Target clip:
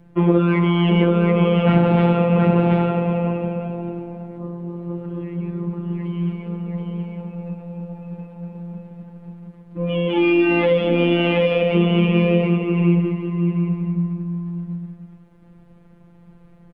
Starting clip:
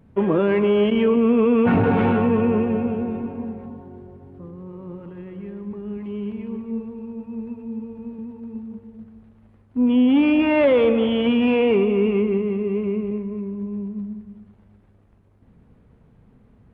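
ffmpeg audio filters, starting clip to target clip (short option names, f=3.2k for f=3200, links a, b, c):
-filter_complex "[0:a]asplit=2[a][b];[b]aecho=0:1:726:0.631[c];[a][c]amix=inputs=2:normalize=0,afftfilt=real='hypot(re,im)*cos(PI*b)':imag='0':win_size=1024:overlap=0.75,acrossover=split=300|3000[d][e][f];[e]acompressor=threshold=-25dB:ratio=10[g];[d][g][f]amix=inputs=3:normalize=0,volume=8dB"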